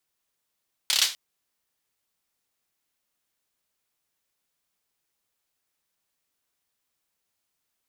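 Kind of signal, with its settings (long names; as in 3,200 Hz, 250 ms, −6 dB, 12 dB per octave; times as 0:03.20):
synth clap length 0.25 s, bursts 5, apart 29 ms, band 3,800 Hz, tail 0.30 s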